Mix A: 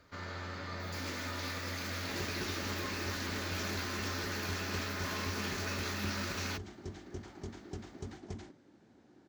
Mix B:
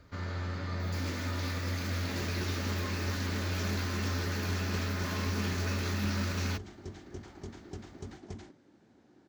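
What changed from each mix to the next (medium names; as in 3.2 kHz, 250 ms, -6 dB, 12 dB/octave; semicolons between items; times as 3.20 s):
first sound: add bass shelf 260 Hz +11 dB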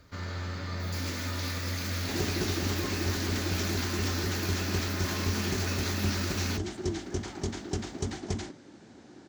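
speech: unmuted; second sound +10.5 dB; master: add treble shelf 3.5 kHz +8 dB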